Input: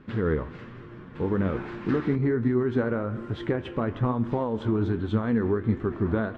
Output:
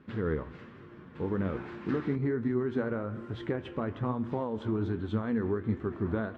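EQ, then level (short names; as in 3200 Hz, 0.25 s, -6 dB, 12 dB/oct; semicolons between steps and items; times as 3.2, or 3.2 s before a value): HPF 43 Hz; notches 60/120 Hz; -5.5 dB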